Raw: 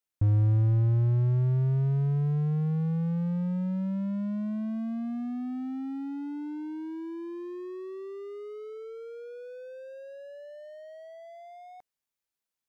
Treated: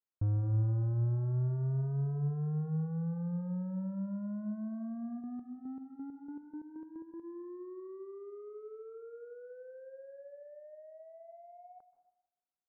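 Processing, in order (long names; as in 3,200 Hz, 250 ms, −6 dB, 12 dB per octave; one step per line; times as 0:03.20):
elliptic low-pass filter 1,500 Hz, stop band 60 dB
0:05.19–0:07.23: square-wave tremolo 2.1 Hz → 6.1 Hz, depth 65%, duty 35%
dense smooth reverb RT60 0.93 s, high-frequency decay 0.8×, pre-delay 120 ms, DRR 11 dB
level −6.5 dB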